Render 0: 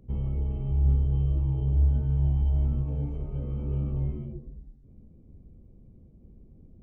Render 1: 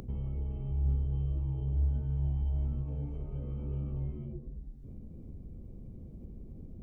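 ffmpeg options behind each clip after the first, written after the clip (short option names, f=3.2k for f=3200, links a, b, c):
-af "acompressor=mode=upward:threshold=-25dB:ratio=2.5,volume=-7dB"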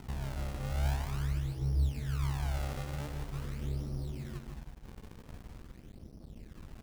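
-af "acrusher=samples=38:mix=1:aa=0.000001:lfo=1:lforange=60.8:lforate=0.45,aecho=1:1:151|302|453|604:0.473|0.166|0.058|0.0203,aeval=exprs='sgn(val(0))*max(abs(val(0))-0.00376,0)':c=same"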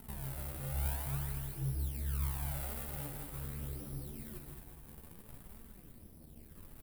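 -filter_complex "[0:a]asplit=2[a][b];[b]aecho=0:1:216|432|648|864|1080|1296:0.398|0.211|0.112|0.0593|0.0314|0.0166[c];[a][c]amix=inputs=2:normalize=0,aexciter=amount=6.8:drive=5.8:freq=8.7k,flanger=delay=4.4:depth=9:regen=39:speed=0.71:shape=sinusoidal,volume=-2dB"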